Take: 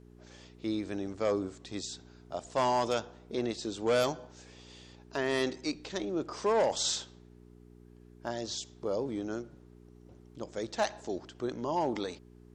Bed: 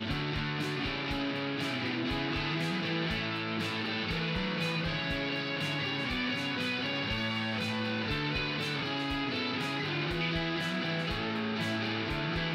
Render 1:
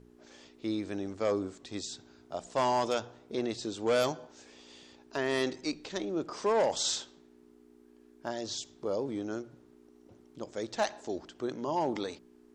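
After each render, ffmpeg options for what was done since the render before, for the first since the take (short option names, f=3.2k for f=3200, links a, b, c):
-af "bandreject=f=60:t=h:w=4,bandreject=f=120:t=h:w=4,bandreject=f=180:t=h:w=4"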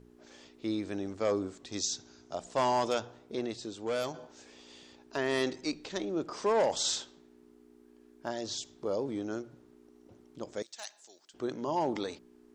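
-filter_complex "[0:a]asettb=1/sr,asplit=3[a][b][c];[a]atrim=end=1.724[d];[b]atrim=start=1.72:end=2.35,asetpts=PTS-STARTPTS,afade=t=in:d=0.004:c=qsin,afade=t=out:st=0.626:d=0.004:c=qsin,lowpass=f=6.2k:t=q:w=4[e];[c]atrim=start=2.346[f];[d][e]acrossfade=d=0.004:c1=hsin:c2=qsin[g];[g][f]acrossfade=d=0.004:c1=qsin:c2=hsin,asettb=1/sr,asplit=3[h][i][j];[h]atrim=end=10.624[k];[i]atrim=start=10.62:end=11.34,asetpts=PTS-STARTPTS,afade=t=in:d=0.004:c=qsin,afade=t=out:st=0.716:d=0.004:c=qsin,aderivative[l];[j]atrim=start=11.336[m];[k][l]acrossfade=d=0.004:c1=hsin:c2=qsin[n];[n][m]acrossfade=d=0.004:c1=qsin:c2=hsin,asplit=2[o][p];[o]atrim=end=4.14,asetpts=PTS-STARTPTS,afade=t=out:st=3.17:d=0.97:c=qua:silence=0.501187[q];[p]atrim=start=4.14,asetpts=PTS-STARTPTS,afade=t=in:d=0.004:c=hsin:silence=0.501187[r];[q][r]concat=n=2:v=0:a=1"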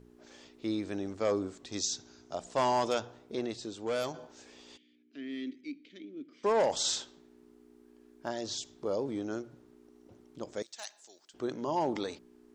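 -filter_complex "[0:a]asplit=3[a][b][c];[a]afade=t=out:st=4.76:d=0.02[d];[b]asplit=3[e][f][g];[e]bandpass=f=270:t=q:w=8,volume=0dB[h];[f]bandpass=f=2.29k:t=q:w=8,volume=-6dB[i];[g]bandpass=f=3.01k:t=q:w=8,volume=-9dB[j];[h][i][j]amix=inputs=3:normalize=0,afade=t=in:st=4.76:d=0.02,afade=t=out:st=6.43:d=0.02[k];[c]afade=t=in:st=6.43:d=0.02[l];[d][k][l]amix=inputs=3:normalize=0"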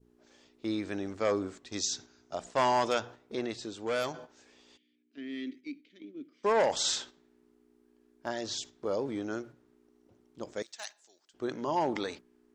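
-af "agate=range=-7dB:threshold=-47dB:ratio=16:detection=peak,adynamicequalizer=threshold=0.00355:dfrequency=1800:dqfactor=0.95:tfrequency=1800:tqfactor=0.95:attack=5:release=100:ratio=0.375:range=3:mode=boostabove:tftype=bell"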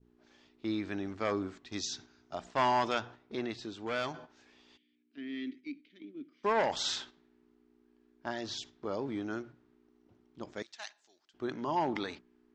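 -af "lowpass=4.4k,equalizer=f=510:w=2.5:g=-7.5"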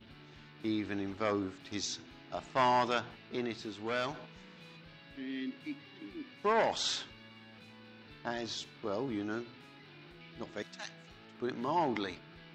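-filter_complex "[1:a]volume=-22dB[a];[0:a][a]amix=inputs=2:normalize=0"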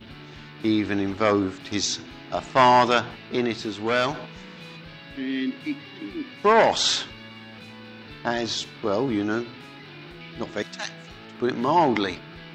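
-af "volume=12dB"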